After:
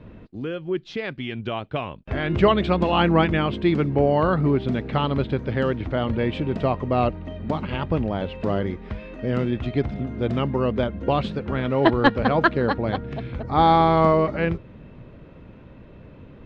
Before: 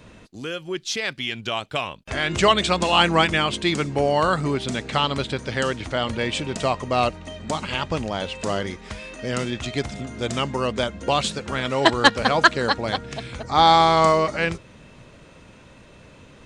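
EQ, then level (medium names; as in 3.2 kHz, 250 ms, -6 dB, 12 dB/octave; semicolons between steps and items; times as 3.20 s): distance through air 360 m; bass shelf 260 Hz +8.5 dB; peaking EQ 360 Hz +4 dB 1.6 oct; -2.5 dB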